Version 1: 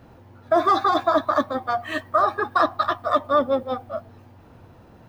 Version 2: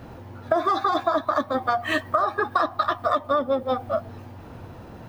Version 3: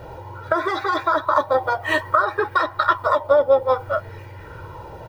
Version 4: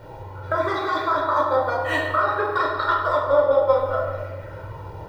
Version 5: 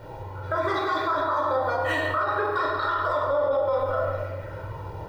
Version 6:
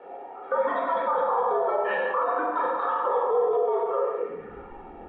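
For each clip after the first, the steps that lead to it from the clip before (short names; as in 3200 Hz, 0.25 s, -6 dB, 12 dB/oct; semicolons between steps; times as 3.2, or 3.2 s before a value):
compressor 6:1, threshold -27 dBFS, peak gain reduction 12.5 dB; gain +7.5 dB
comb 2.1 ms, depth 86%; LFO bell 0.59 Hz 690–2100 Hz +10 dB
reverb RT60 1.7 s, pre-delay 7 ms, DRR -2.5 dB; gain -6 dB
limiter -16.5 dBFS, peak gain reduction 11 dB
high-pass sweep 680 Hz -> 68 Hz, 4.14–4.84; mistuned SSB -110 Hz 160–3000 Hz; gain -3.5 dB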